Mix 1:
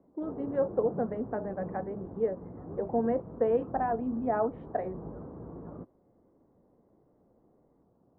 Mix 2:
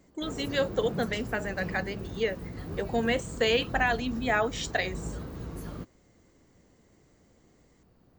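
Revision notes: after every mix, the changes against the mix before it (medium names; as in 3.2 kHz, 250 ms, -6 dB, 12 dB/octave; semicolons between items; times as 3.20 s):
background: remove high-pass 230 Hz 6 dB/octave; master: remove low-pass 1 kHz 24 dB/octave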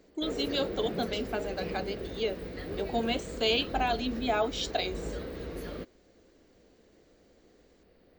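speech: add static phaser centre 500 Hz, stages 6; master: add graphic EQ 125/500/1000/2000/4000/8000 Hz -10/+9/-6/+7/+7/-7 dB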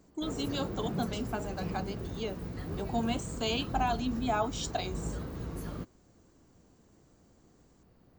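master: add graphic EQ 125/500/1000/2000/4000/8000 Hz +10/-9/+6/-7/-7/+7 dB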